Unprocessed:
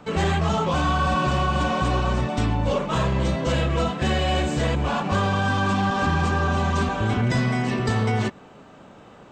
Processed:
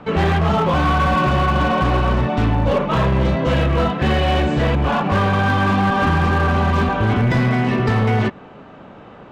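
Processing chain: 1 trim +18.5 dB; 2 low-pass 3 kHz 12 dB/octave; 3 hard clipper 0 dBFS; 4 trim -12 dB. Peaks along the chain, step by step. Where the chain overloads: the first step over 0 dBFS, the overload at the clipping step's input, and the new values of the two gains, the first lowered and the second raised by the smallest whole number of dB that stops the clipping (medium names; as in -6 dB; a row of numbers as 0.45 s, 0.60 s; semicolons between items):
+6.0 dBFS, +6.0 dBFS, 0.0 dBFS, -12.0 dBFS; step 1, 6.0 dB; step 1 +12.5 dB, step 4 -6 dB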